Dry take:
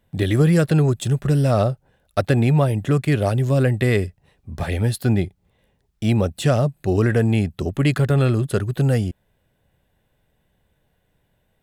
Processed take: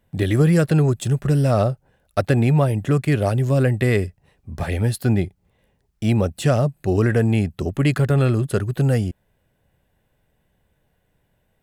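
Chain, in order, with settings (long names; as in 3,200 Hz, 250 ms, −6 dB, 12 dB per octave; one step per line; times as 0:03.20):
parametric band 3,600 Hz −3.5 dB 0.41 octaves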